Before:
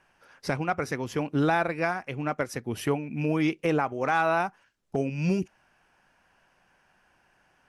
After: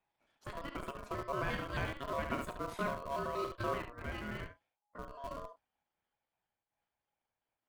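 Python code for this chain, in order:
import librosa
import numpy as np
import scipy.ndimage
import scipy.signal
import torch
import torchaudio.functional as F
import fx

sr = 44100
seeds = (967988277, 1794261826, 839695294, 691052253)

p1 = fx.pitch_trill(x, sr, semitones=7.0, every_ms=92)
p2 = fx.doppler_pass(p1, sr, speed_mps=16, closest_m=12.0, pass_at_s=2.28)
p3 = fx.low_shelf(p2, sr, hz=160.0, db=9.0)
p4 = fx.doubler(p3, sr, ms=34.0, db=-11.0)
p5 = p4 + 10.0 ** (-6.5 / 20.0) * np.pad(p4, (int(71 * sr / 1000.0), 0))[:len(p4)]
p6 = p5 * np.sin(2.0 * np.pi * 830.0 * np.arange(len(p5)) / sr)
p7 = fx.high_shelf(p6, sr, hz=2100.0, db=-5.5)
p8 = fx.schmitt(p7, sr, flips_db=-32.0)
p9 = p7 + (p8 * librosa.db_to_amplitude(-4.5))
p10 = fx.am_noise(p9, sr, seeds[0], hz=5.7, depth_pct=60)
y = p10 * librosa.db_to_amplitude(-4.5)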